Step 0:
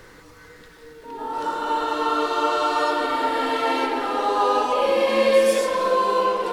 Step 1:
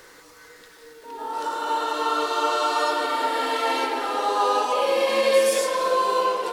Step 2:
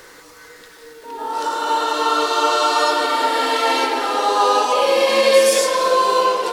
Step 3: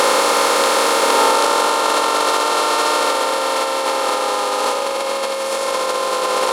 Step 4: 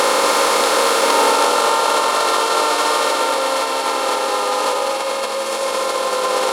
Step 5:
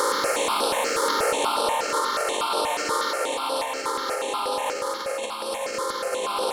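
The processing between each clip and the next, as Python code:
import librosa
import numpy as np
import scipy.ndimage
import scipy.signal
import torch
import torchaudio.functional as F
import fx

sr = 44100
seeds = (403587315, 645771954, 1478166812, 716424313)

y1 = fx.bass_treble(x, sr, bass_db=-13, treble_db=6)
y1 = fx.end_taper(y1, sr, db_per_s=140.0)
y1 = y1 * librosa.db_to_amplitude(-1.0)
y2 = fx.dynamic_eq(y1, sr, hz=5400.0, q=1.0, threshold_db=-45.0, ratio=4.0, max_db=4)
y2 = y2 * librosa.db_to_amplitude(5.5)
y3 = fx.bin_compress(y2, sr, power=0.2)
y3 = fx.over_compress(y3, sr, threshold_db=-12.0, ratio=-0.5)
y3 = y3 * librosa.db_to_amplitude(-4.0)
y4 = y3 + 10.0 ** (-6.0 / 20.0) * np.pad(y3, (int(235 * sr / 1000.0), 0))[:len(y3)]
y4 = y4 * librosa.db_to_amplitude(-1.0)
y5 = fx.phaser_held(y4, sr, hz=8.3, low_hz=700.0, high_hz=6800.0)
y5 = y5 * librosa.db_to_amplitude(-5.0)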